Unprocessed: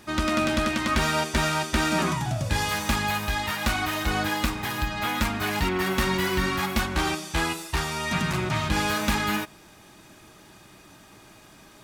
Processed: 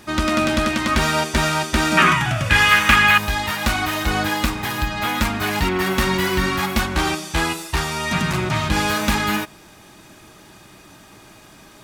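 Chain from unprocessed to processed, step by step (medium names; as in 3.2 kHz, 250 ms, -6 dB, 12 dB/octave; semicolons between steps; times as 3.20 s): 1.97–3.18 s: high-order bell 1.9 kHz +11.5 dB; trim +5 dB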